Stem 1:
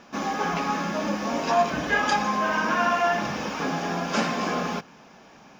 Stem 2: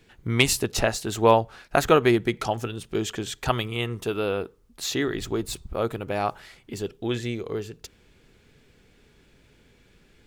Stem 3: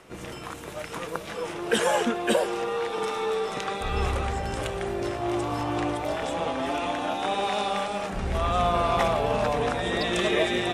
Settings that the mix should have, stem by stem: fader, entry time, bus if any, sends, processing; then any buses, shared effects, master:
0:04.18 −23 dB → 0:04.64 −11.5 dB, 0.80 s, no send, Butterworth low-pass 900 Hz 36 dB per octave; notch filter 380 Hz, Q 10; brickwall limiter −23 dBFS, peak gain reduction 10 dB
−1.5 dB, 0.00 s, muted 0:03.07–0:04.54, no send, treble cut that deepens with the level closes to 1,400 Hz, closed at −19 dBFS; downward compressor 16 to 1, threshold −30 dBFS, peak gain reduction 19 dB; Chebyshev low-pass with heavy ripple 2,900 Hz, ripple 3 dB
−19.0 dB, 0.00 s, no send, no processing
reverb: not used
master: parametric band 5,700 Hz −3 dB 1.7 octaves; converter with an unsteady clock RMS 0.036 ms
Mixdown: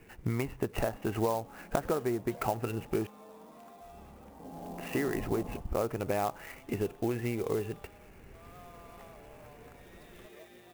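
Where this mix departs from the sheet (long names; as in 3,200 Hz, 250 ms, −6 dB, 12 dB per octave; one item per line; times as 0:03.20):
stem 2 −1.5 dB → +5.0 dB
stem 3 −19.0 dB → −28.5 dB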